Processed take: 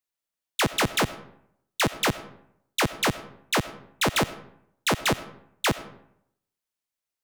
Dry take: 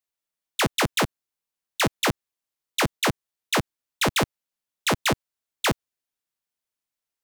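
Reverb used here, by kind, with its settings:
comb and all-pass reverb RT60 0.74 s, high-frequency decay 0.6×, pre-delay 45 ms, DRR 15 dB
level −1 dB

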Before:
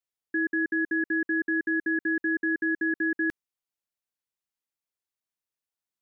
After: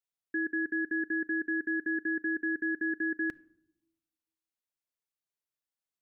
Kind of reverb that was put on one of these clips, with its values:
rectangular room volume 2,100 cubic metres, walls furnished, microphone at 0.31 metres
level −4.5 dB

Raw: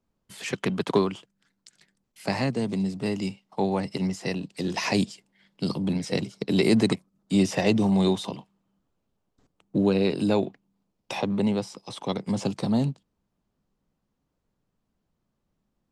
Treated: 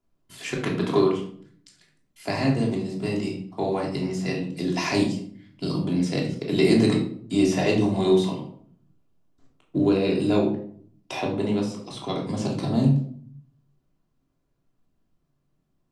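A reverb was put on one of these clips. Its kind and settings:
rectangular room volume 770 cubic metres, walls furnished, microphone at 3.1 metres
level −3 dB

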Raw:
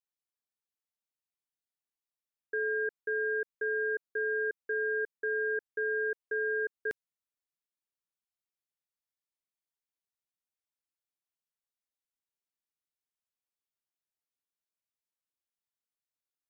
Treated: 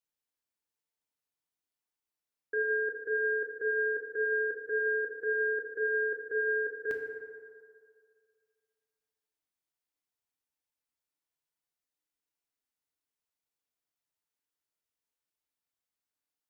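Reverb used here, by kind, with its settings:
feedback delay network reverb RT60 2.1 s, low-frequency decay 0.7×, high-frequency decay 0.4×, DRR 1.5 dB

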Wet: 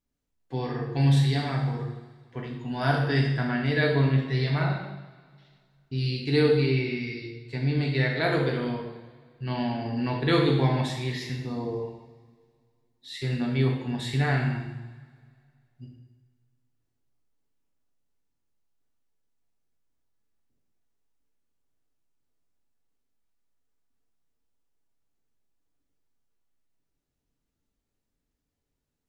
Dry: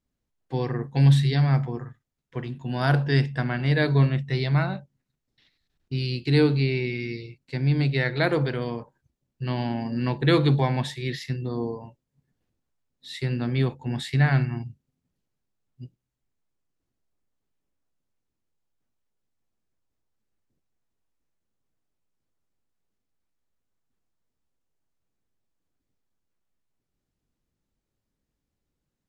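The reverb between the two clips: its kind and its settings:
coupled-rooms reverb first 0.89 s, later 2.3 s, from −17 dB, DRR −1 dB
level −4 dB

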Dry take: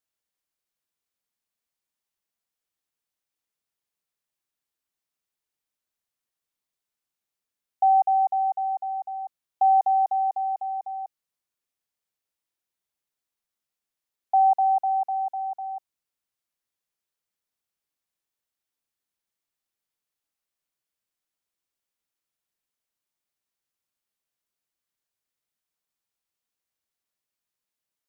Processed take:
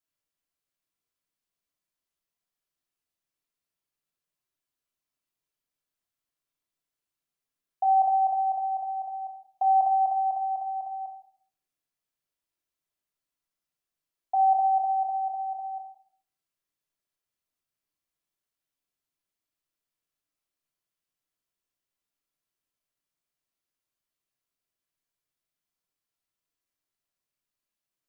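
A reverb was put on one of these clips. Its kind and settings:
rectangular room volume 790 cubic metres, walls furnished, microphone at 3 metres
level −5.5 dB

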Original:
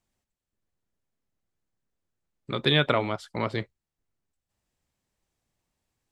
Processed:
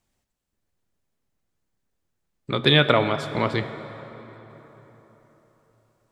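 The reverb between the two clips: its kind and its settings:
dense smooth reverb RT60 4.2 s, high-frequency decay 0.6×, DRR 10 dB
level +5 dB

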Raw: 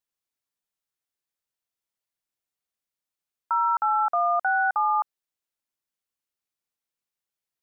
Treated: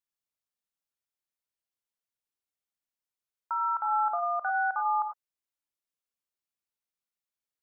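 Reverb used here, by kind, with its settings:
reverb whose tail is shaped and stops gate 120 ms rising, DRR 6 dB
level −6.5 dB

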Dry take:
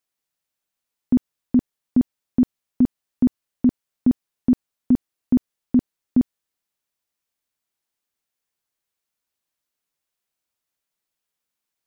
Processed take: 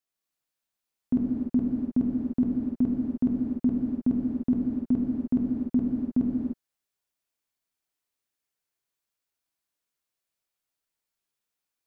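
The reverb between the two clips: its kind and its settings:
reverb whose tail is shaped and stops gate 330 ms flat, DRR −3 dB
level −7.5 dB

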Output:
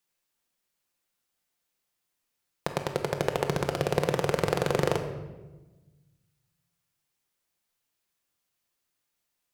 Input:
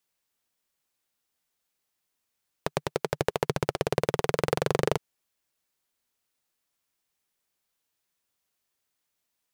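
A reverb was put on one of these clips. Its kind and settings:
rectangular room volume 710 cubic metres, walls mixed, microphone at 0.84 metres
level −1 dB

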